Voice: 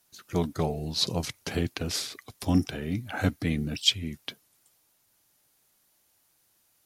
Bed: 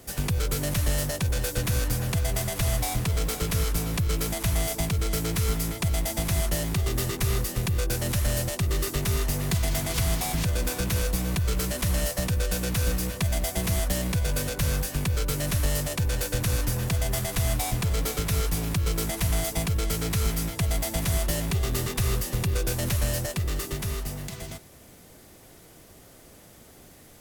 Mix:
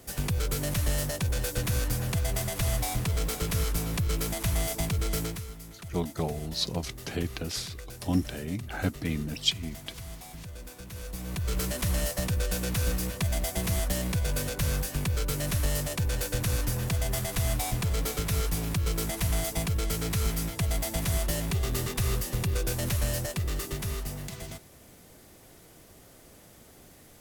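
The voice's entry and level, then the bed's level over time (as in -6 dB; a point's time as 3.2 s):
5.60 s, -3.0 dB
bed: 5.23 s -2.5 dB
5.48 s -16.5 dB
10.88 s -16.5 dB
11.57 s -2.5 dB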